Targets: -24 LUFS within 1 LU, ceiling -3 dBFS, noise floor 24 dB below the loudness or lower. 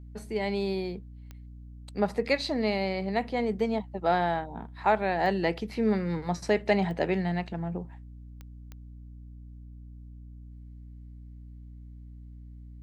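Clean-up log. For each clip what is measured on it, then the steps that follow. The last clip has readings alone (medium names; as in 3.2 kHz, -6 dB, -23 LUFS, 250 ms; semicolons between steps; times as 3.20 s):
clicks found 5; hum 60 Hz; highest harmonic 300 Hz; hum level -43 dBFS; loudness -29.0 LUFS; peak level -11.5 dBFS; loudness target -24.0 LUFS
-> de-click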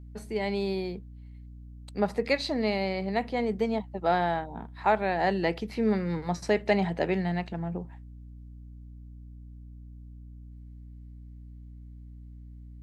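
clicks found 0; hum 60 Hz; highest harmonic 300 Hz; hum level -43 dBFS
-> de-hum 60 Hz, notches 5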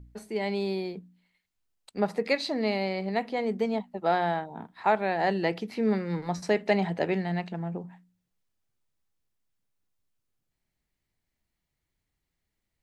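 hum not found; loudness -29.0 LUFS; peak level -11.5 dBFS; loudness target -24.0 LUFS
-> trim +5 dB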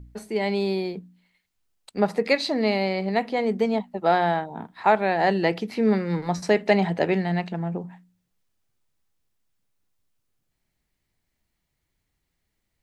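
loudness -24.0 LUFS; peak level -6.5 dBFS; noise floor -78 dBFS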